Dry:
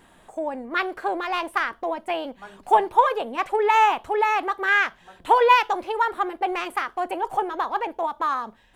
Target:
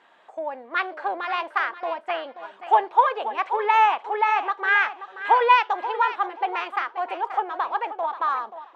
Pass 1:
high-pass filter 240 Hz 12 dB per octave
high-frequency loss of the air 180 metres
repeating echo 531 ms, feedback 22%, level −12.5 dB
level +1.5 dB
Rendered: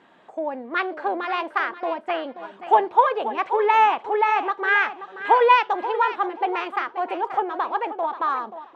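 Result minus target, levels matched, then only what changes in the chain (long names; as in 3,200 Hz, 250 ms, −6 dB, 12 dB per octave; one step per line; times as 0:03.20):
250 Hz band +8.0 dB
change: high-pass filter 600 Hz 12 dB per octave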